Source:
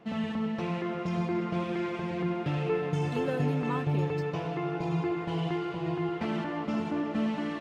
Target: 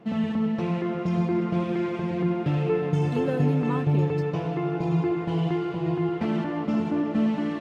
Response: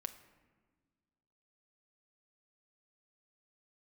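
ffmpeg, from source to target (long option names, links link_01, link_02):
-af "equalizer=frequency=190:width=0.35:gain=6.5"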